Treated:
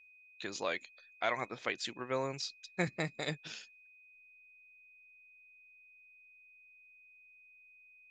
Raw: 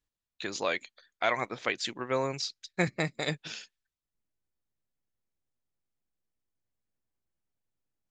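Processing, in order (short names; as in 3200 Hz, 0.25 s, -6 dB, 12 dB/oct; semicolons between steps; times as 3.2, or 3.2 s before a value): whine 2500 Hz -53 dBFS; gain -5.5 dB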